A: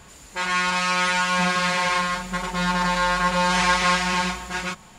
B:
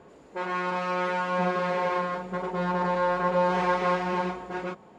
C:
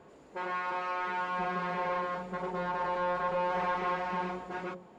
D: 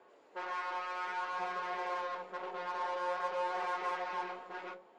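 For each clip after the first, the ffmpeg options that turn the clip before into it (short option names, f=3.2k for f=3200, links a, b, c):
-af "bandpass=f=420:t=q:w=1.6:csg=0,volume=5.5dB"
-filter_complex "[0:a]bandreject=f=60:t=h:w=6,bandreject=f=120:t=h:w=6,bandreject=f=180:t=h:w=6,bandreject=f=240:t=h:w=6,bandreject=f=300:t=h:w=6,bandreject=f=360:t=h:w=6,bandreject=f=420:t=h:w=6,bandreject=f=480:t=h:w=6,bandreject=f=540:t=h:w=6,asoftclip=type=tanh:threshold=-21.5dB,acrossover=split=3000[a][b];[b]acompressor=threshold=-53dB:ratio=4:attack=1:release=60[c];[a][c]amix=inputs=2:normalize=0,volume=-3dB"
-filter_complex "[0:a]aeval=exprs='0.0631*(cos(1*acos(clip(val(0)/0.0631,-1,1)))-cos(1*PI/2))+0.00447*(cos(8*acos(clip(val(0)/0.0631,-1,1)))-cos(8*PI/2))':c=same,acrossover=split=330 6100:gain=0.0708 1 0.224[a][b][c];[a][b][c]amix=inputs=3:normalize=0,flanger=delay=8.1:depth=7.9:regen=57:speed=0.55:shape=sinusoidal"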